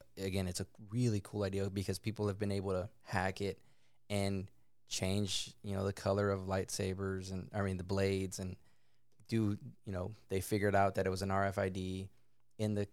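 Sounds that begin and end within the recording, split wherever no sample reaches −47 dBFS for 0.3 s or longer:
0:04.10–0:04.46
0:04.91–0:08.55
0:09.29–0:12.06

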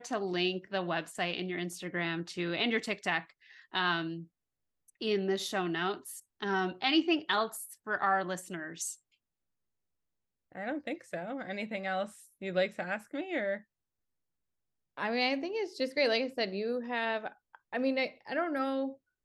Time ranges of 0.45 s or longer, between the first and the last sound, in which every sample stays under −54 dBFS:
0:04.26–0:04.88
0:08.96–0:10.52
0:13.62–0:14.97

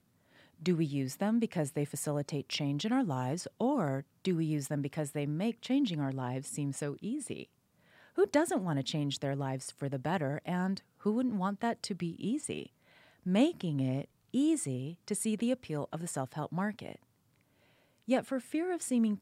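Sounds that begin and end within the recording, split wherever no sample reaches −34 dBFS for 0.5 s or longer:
0:00.66–0:07.43
0:08.18–0:12.63
0:13.26–0:16.92

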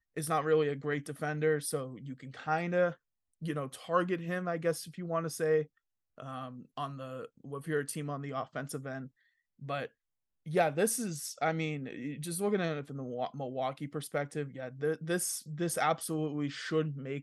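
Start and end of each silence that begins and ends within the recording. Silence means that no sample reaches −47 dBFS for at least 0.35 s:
0:02.94–0:03.42
0:05.65–0:06.18
0:09.08–0:09.62
0:09.87–0:10.46

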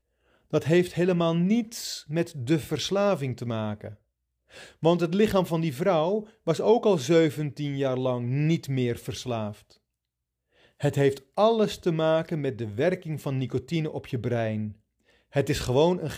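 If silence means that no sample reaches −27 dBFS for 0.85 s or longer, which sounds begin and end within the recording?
0:04.83–0:09.49

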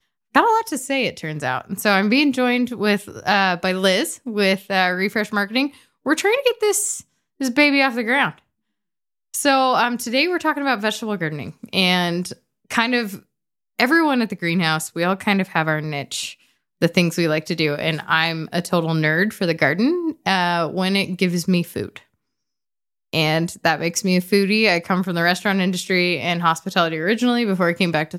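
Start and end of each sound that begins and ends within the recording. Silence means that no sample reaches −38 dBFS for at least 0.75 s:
0:09.34–0:22.00

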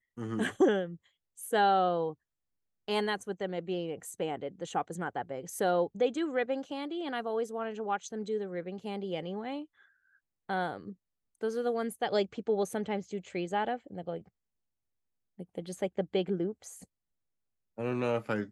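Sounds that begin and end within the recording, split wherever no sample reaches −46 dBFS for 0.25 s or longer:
0:01.38–0:02.13
0:02.88–0:09.65
0:10.49–0:10.93
0:11.41–0:14.22
0:15.39–0:16.84

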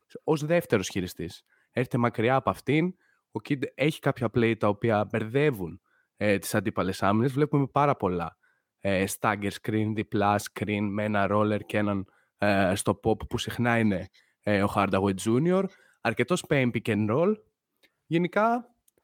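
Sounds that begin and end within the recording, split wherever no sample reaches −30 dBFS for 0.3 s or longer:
0:01.77–0:02.90
0:03.35–0:05.69
0:06.21–0:08.28
0:08.85–0:12.02
0:12.42–0:14.03
0:14.47–0:15.66
0:16.05–0:17.34
0:18.11–0:18.59

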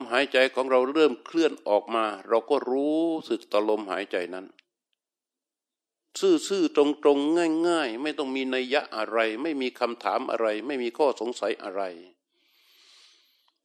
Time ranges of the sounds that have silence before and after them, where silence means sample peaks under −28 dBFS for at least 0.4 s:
0:06.16–0:11.90

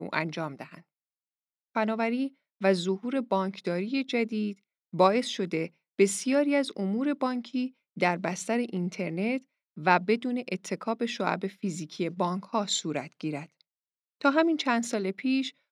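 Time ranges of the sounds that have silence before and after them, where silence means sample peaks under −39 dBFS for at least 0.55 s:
0:01.76–0:13.44

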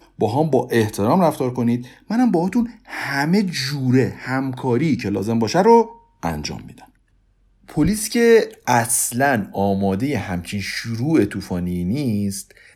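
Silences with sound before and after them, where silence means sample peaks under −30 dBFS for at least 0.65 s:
0:06.71–0:07.70

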